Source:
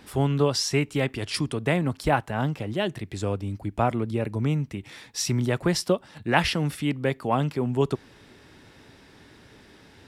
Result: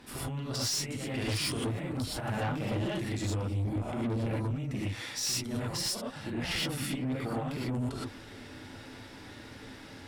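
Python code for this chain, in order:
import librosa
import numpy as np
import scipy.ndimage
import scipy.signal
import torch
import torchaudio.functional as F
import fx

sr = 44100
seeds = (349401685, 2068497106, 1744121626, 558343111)

y = fx.over_compress(x, sr, threshold_db=-28.0, ratio=-0.5)
y = fx.rev_gated(y, sr, seeds[0], gate_ms=140, shape='rising', drr_db=-7.5)
y = fx.tube_stage(y, sr, drive_db=20.0, bias=0.25)
y = y * librosa.db_to_amplitude(-7.5)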